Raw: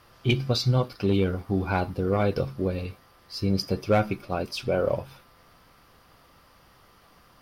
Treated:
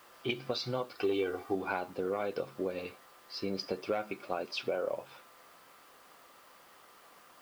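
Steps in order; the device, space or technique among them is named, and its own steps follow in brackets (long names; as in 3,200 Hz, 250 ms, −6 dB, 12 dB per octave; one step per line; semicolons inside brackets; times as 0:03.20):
baby monitor (band-pass filter 360–3,900 Hz; downward compressor, threshold −30 dBFS, peak gain reduction 11.5 dB; white noise bed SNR 27 dB)
0:00.97–0:01.55: comb filter 2.6 ms, depth 66%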